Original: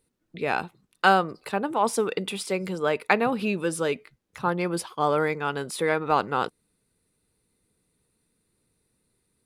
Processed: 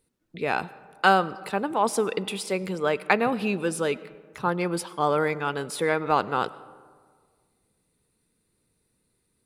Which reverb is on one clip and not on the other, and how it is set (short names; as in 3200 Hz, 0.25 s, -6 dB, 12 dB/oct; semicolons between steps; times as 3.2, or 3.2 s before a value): digital reverb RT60 1.8 s, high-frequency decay 0.4×, pre-delay 60 ms, DRR 18.5 dB